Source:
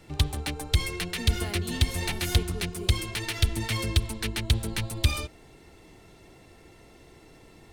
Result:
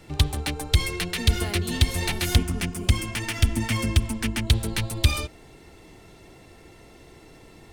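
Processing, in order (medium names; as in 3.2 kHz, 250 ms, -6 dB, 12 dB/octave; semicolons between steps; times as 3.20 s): 2.35–4.47 s: graphic EQ with 31 bands 250 Hz +12 dB, 400 Hz -10 dB, 4 kHz -10 dB, 12.5 kHz -4 dB; trim +3.5 dB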